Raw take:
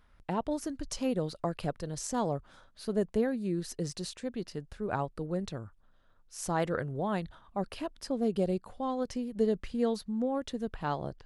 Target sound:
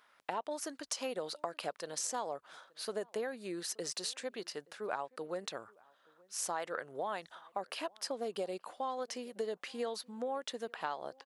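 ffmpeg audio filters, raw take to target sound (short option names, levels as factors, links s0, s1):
-filter_complex "[0:a]highpass=640,acompressor=threshold=0.0112:ratio=5,asplit=2[s0][s1];[s1]adelay=874.6,volume=0.0501,highshelf=f=4000:g=-19.7[s2];[s0][s2]amix=inputs=2:normalize=0,volume=1.78"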